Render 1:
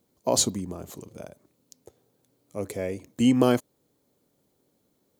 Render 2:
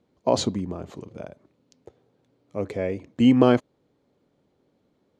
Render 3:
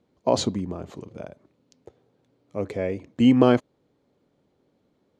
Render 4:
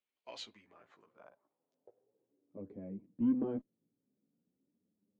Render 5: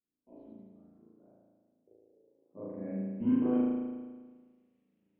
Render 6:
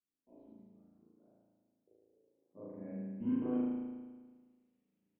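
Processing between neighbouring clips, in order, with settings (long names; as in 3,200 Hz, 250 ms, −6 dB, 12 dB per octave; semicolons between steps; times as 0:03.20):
low-pass filter 3,200 Hz 12 dB per octave; level +3.5 dB
no processing that can be heard
band-pass filter sweep 2,700 Hz → 210 Hz, 0:00.44–0:02.82; multi-voice chorus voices 2, 0.39 Hz, delay 14 ms, depth 4.6 ms; harmonic generator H 6 −33 dB, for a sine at −16 dBFS; level −6 dB
low-pass filter sweep 270 Hz → 2,600 Hz, 0:01.89–0:02.98; spring reverb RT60 1.5 s, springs 36 ms, chirp 70 ms, DRR −9.5 dB; level −3 dB
single-tap delay 145 ms −11.5 dB; level −6.5 dB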